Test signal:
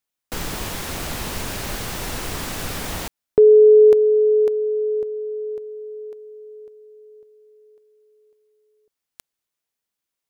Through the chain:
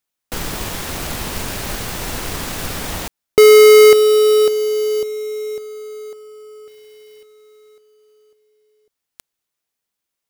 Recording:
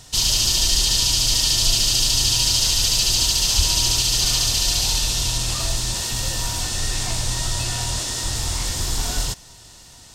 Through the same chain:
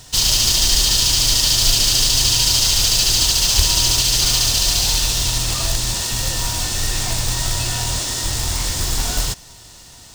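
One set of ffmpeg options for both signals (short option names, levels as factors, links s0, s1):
-af "acrusher=bits=2:mode=log:mix=0:aa=0.000001,volume=1.33"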